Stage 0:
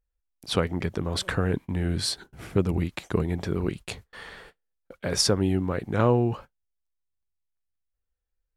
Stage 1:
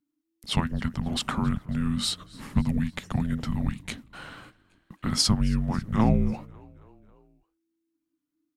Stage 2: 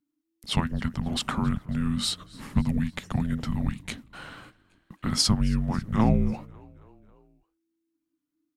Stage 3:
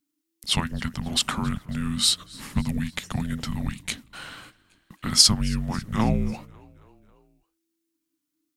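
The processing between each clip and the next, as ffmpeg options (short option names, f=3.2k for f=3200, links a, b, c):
-filter_complex "[0:a]asplit=5[a][b][c][d][e];[b]adelay=273,afreqshift=62,volume=-24dB[f];[c]adelay=546,afreqshift=124,volume=-28.9dB[g];[d]adelay=819,afreqshift=186,volume=-33.8dB[h];[e]adelay=1092,afreqshift=248,volume=-38.6dB[i];[a][f][g][h][i]amix=inputs=5:normalize=0,afreqshift=-330"
-af anull
-af "highshelf=f=2.1k:g=11.5,volume=-1.5dB"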